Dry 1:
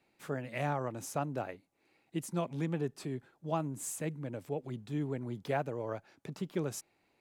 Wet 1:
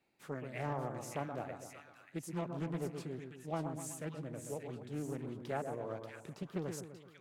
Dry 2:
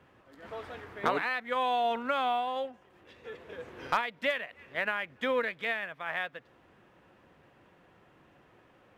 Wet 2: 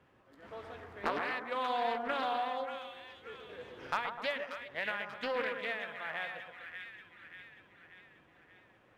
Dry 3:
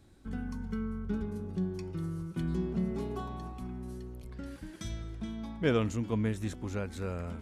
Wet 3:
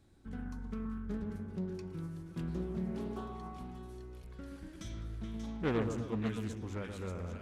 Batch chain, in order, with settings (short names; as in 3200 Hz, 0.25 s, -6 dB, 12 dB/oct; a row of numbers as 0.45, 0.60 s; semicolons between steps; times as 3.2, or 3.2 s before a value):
split-band echo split 1400 Hz, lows 0.126 s, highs 0.585 s, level -6 dB; Doppler distortion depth 0.45 ms; gain -5.5 dB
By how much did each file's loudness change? -4.5, -5.0, -4.5 LU